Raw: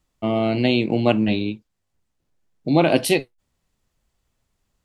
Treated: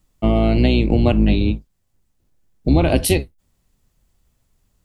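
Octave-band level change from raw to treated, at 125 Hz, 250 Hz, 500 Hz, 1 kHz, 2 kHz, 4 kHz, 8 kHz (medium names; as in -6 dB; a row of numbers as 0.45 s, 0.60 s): +8.0 dB, +2.5 dB, 0.0 dB, -1.0 dB, -1.5 dB, -0.5 dB, +5.0 dB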